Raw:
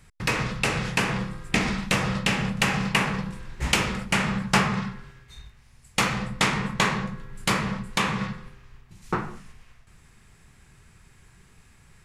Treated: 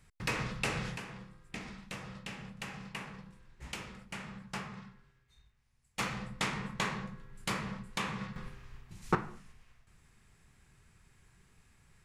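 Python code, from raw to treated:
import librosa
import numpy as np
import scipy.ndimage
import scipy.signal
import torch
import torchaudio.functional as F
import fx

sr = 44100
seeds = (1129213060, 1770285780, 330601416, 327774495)

y = fx.gain(x, sr, db=fx.steps((0.0, -9.0), (0.97, -20.0), (5.99, -11.5), (8.36, -1.5), (9.15, -9.5)))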